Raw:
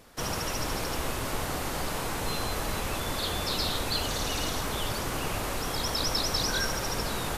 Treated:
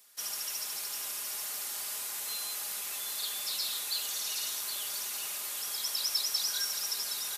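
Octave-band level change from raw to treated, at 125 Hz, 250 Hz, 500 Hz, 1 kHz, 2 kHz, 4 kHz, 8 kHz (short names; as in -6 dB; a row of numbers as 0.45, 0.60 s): under -35 dB, -27.5 dB, -20.5 dB, -15.0 dB, -9.5 dB, -2.5 dB, +2.0 dB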